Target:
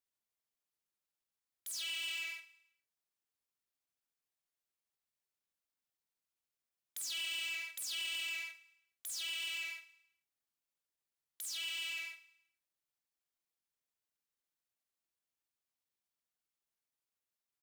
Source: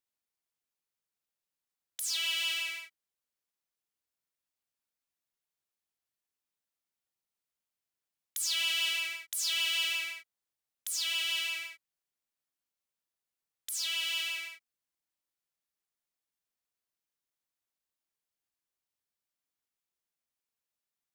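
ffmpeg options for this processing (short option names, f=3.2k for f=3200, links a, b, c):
-filter_complex "[0:a]asoftclip=type=tanh:threshold=-32dB,atempo=1.2,asplit=2[a][b];[b]adelay=49,volume=-10dB[c];[a][c]amix=inputs=2:normalize=0,asplit=2[d][e];[e]aecho=0:1:107|214|321|428:0.119|0.0523|0.023|0.0101[f];[d][f]amix=inputs=2:normalize=0,volume=-3.5dB"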